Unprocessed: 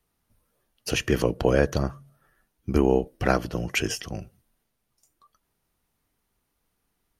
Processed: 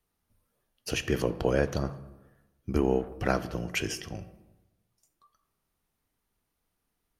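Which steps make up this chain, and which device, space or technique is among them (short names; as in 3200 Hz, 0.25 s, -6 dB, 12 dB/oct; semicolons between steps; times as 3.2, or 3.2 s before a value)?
saturated reverb return (on a send at -10.5 dB: reverb RT60 1.0 s, pre-delay 11 ms + soft clip -20.5 dBFS, distortion -11 dB); on the sum: gain -5 dB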